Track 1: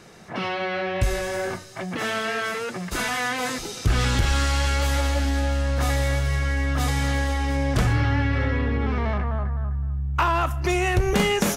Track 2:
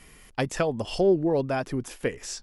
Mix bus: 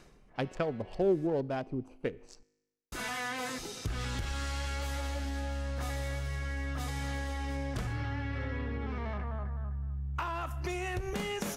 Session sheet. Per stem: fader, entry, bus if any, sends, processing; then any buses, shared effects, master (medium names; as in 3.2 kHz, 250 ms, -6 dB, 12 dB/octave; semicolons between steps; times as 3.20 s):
-6.0 dB, 0.00 s, muted 1.27–2.92 s, no send, compression, threshold -23 dBFS, peak gain reduction 8 dB; auto duck -20 dB, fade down 0.25 s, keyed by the second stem
-3.5 dB, 0.00 s, no send, local Wiener filter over 25 samples; treble shelf 8.2 kHz -7 dB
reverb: none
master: feedback comb 52 Hz, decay 0.99 s, harmonics all, mix 30%